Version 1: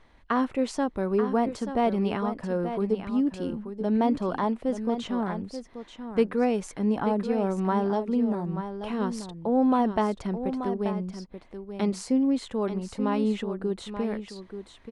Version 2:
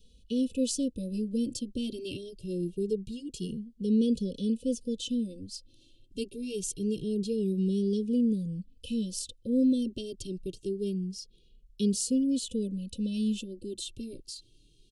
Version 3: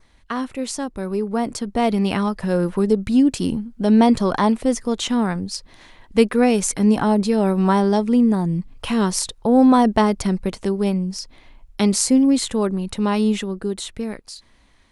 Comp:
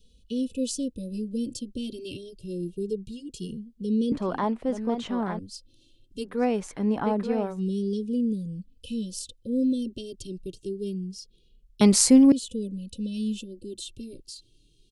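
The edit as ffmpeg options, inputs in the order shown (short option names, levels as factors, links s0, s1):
-filter_complex "[0:a]asplit=2[s0][s1];[1:a]asplit=4[s2][s3][s4][s5];[s2]atrim=end=4.122[s6];[s0]atrim=start=4.118:end=5.392[s7];[s3]atrim=start=5.388:end=6.44[s8];[s1]atrim=start=6.2:end=7.63[s9];[s4]atrim=start=7.39:end=11.812[s10];[2:a]atrim=start=11.808:end=12.322[s11];[s5]atrim=start=12.318[s12];[s6][s7]acrossfade=d=0.004:c1=hsin:c2=hsin[s13];[s13][s8]acrossfade=d=0.004:c1=hsin:c2=hsin[s14];[s14][s9]acrossfade=d=0.24:c1=tri:c2=tri[s15];[s15][s10]acrossfade=d=0.24:c1=tri:c2=tri[s16];[s16][s11]acrossfade=d=0.004:c1=hsin:c2=hsin[s17];[s17][s12]acrossfade=d=0.004:c1=hsin:c2=hsin"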